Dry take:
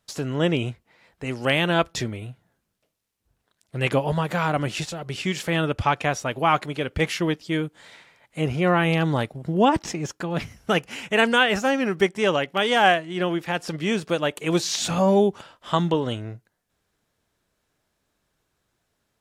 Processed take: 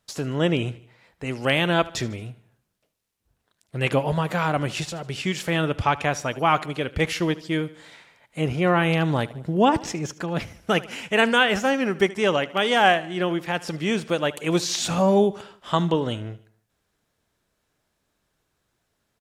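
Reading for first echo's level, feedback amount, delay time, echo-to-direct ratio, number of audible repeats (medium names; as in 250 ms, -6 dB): -19.0 dB, 49%, 75 ms, -18.0 dB, 3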